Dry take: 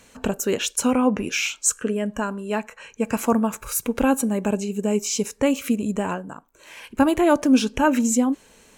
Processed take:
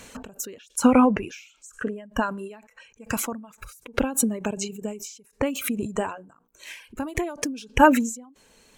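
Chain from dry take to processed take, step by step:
0:05.94–0:06.94: mains-hum notches 60/120/180/240/300/360/420/480 Hz
reverb reduction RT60 1.9 s
every ending faded ahead of time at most 100 dB per second
level +7 dB

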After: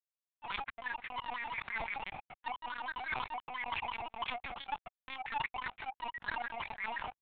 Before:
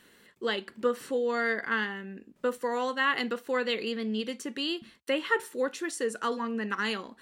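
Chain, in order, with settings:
LFO wah 5.9 Hz 260–1,800 Hz, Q 6.7
leveller curve on the samples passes 3
reversed playback
downward compressor 6 to 1, threshold −38 dBFS, peak gain reduction 12 dB
reversed playback
frequency shifter +480 Hz
power curve on the samples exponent 3
linear-prediction vocoder at 8 kHz pitch kept
level that may fall only so fast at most 28 dB per second
level +12.5 dB

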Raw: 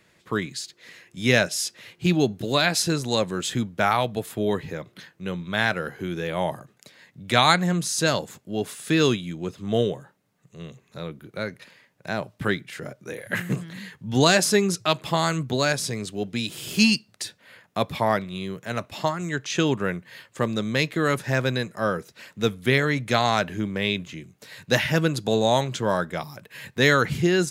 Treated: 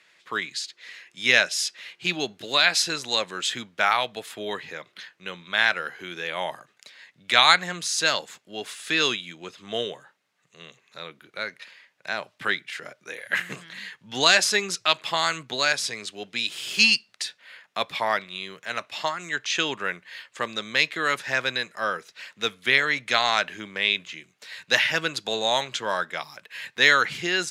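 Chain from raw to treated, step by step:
resonant band-pass 2,800 Hz, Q 0.66
level +5 dB

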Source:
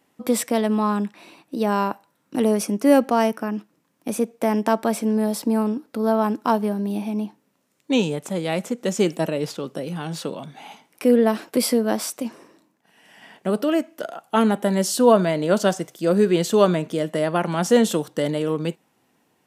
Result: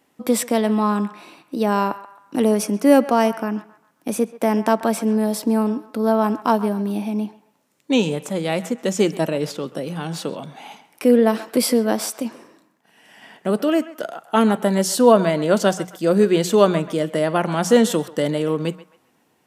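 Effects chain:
mains-hum notches 60/120/180 Hz
feedback echo with a band-pass in the loop 133 ms, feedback 41%, band-pass 1,300 Hz, level −14 dB
level +2 dB

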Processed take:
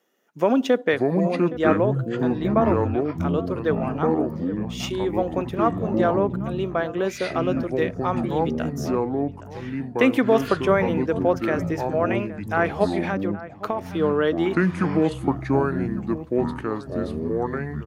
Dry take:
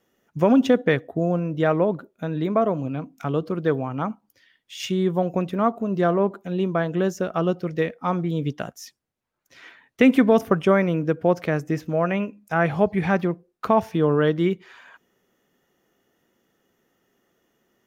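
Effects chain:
high-pass filter 290 Hz 12 dB per octave
0:12.84–0:13.86: downward compressor, threshold −23 dBFS, peak gain reduction 10 dB
slap from a distant wall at 140 metres, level −15 dB
delay with pitch and tempo change per echo 410 ms, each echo −6 semitones, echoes 3

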